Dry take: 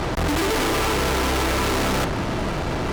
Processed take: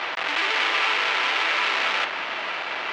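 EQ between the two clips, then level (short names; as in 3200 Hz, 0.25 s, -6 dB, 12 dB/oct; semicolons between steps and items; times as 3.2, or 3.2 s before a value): HPF 770 Hz 12 dB/oct; air absorption 160 m; bell 2600 Hz +12 dB 1.7 oct; -2.5 dB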